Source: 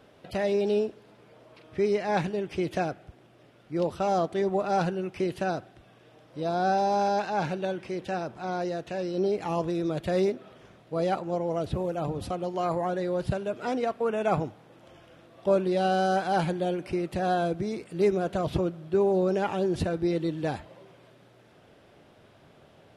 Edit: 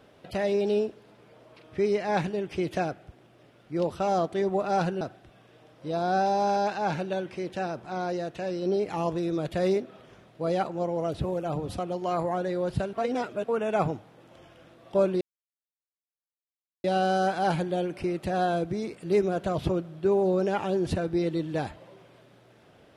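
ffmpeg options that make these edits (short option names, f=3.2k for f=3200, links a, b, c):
-filter_complex "[0:a]asplit=5[a][b][c][d][e];[a]atrim=end=5.012[f];[b]atrim=start=5.528:end=13.452[g];[c]atrim=start=13.448:end=13.962,asetpts=PTS-STARTPTS,areverse[h];[d]atrim=start=13.958:end=15.73,asetpts=PTS-STARTPTS,afade=t=out:st=1.768:d=0.004:c=hsin,apad=pad_dur=1.63[i];[e]atrim=start=15.73,asetpts=PTS-STARTPTS,afade=t=in:d=0.004:c=hsin[j];[f][g]acrossfade=d=0.004:c1=hsin:c2=hsin[k];[k][h]acrossfade=d=0.004:c1=hsin:c2=hsin[l];[i][j]concat=n=2:v=0:a=1[m];[l][m]acrossfade=d=0.004:c1=hsin:c2=hsin"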